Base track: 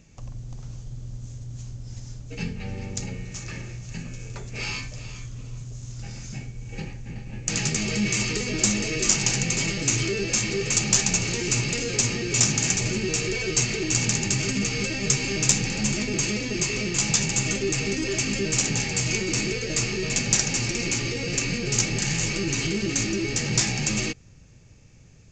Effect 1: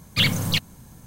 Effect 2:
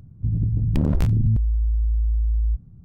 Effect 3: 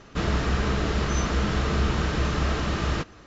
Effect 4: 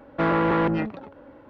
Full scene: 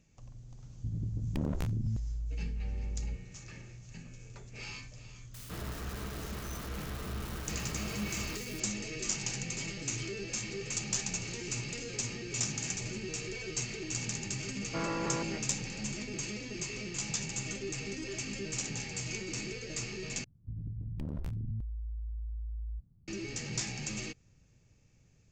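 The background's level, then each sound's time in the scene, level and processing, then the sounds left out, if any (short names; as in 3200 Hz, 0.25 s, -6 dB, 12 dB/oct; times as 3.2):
base track -13 dB
0.6 add 2 -8 dB + low shelf 190 Hz -8 dB
5.34 add 3 -16 dB + switching spikes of -21.5 dBFS
14.55 add 4 -14 dB
20.24 replace with 2 -18 dB
not used: 1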